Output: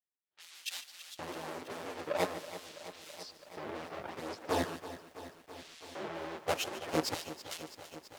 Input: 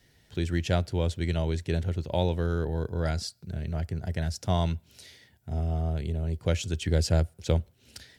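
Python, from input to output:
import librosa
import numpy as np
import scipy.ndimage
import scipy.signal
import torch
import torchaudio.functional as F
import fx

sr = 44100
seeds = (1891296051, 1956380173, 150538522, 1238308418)

y = fx.halfwave_hold(x, sr)
y = fx.env_lowpass(y, sr, base_hz=400.0, full_db=-19.5)
y = scipy.signal.sosfilt(scipy.signal.butter(4, 64.0, 'highpass', fs=sr, output='sos'), y)
y = fx.high_shelf(y, sr, hz=3400.0, db=-4.5)
y = fx.level_steps(y, sr, step_db=17)
y = 10.0 ** (-14.0 / 20.0) * np.tanh(y / 10.0 ** (-14.0 / 20.0))
y = fx.chorus_voices(y, sr, voices=4, hz=0.84, base_ms=15, depth_ms=4.8, mix_pct=65)
y = fx.filter_lfo_highpass(y, sr, shape='square', hz=0.42, low_hz=420.0, high_hz=3500.0, q=1.0)
y = y + 10.0 ** (-15.5 / 20.0) * np.pad(y, (int(147 * sr / 1000.0), 0))[:len(y)]
y = fx.echo_crushed(y, sr, ms=329, feedback_pct=80, bits=10, wet_db=-13.5)
y = F.gain(torch.from_numpy(y), 4.0).numpy()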